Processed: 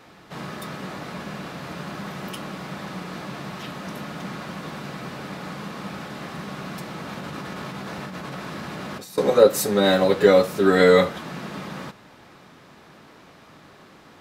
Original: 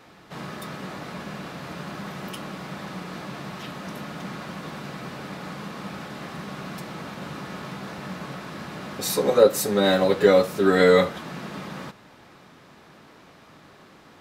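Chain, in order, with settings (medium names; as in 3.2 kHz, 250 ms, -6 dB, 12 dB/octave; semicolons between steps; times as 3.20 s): 7.09–9.18 s: compressor with a negative ratio -36 dBFS, ratio -1; trim +1.5 dB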